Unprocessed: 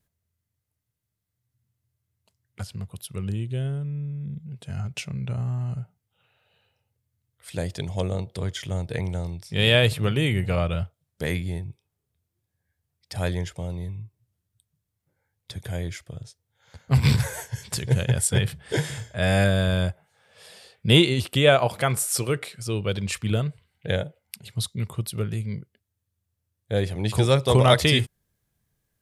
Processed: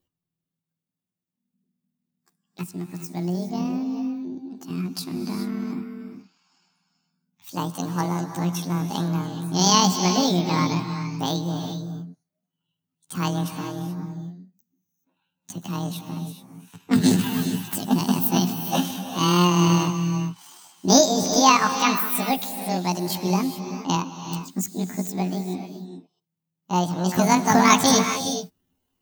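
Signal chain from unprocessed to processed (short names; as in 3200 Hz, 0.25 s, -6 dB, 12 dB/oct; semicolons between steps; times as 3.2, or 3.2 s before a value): delay-line pitch shifter +10 st; non-linear reverb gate 0.45 s rising, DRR 7 dB; spectral noise reduction 8 dB; gain +2 dB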